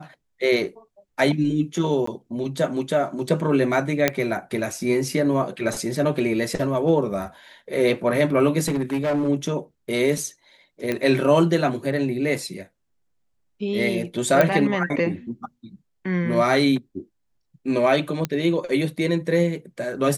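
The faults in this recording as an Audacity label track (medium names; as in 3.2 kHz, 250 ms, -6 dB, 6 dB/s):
2.060000	2.070000	dropout 14 ms
4.080000	4.080000	pop -3 dBFS
8.660000	9.290000	clipped -19 dBFS
10.920000	10.920000	pop -11 dBFS
14.410000	14.410000	pop -6 dBFS
18.250000	18.250000	pop -10 dBFS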